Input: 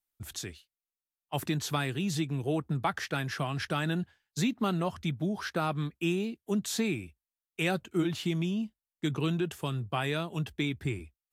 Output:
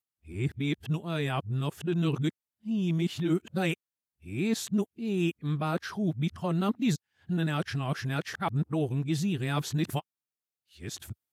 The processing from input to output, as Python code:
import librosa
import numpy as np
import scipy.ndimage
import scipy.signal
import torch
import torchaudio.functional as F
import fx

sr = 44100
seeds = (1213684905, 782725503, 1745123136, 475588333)

y = x[::-1].copy()
y = scipy.signal.sosfilt(scipy.signal.butter(4, 80.0, 'highpass', fs=sr, output='sos'), y)
y = fx.low_shelf(y, sr, hz=310.0, db=6.5)
y = F.gain(torch.from_numpy(y), -2.0).numpy()